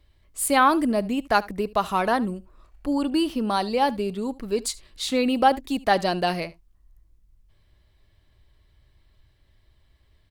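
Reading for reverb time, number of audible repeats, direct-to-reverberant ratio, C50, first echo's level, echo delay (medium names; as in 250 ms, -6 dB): no reverb, 1, no reverb, no reverb, -21.0 dB, 74 ms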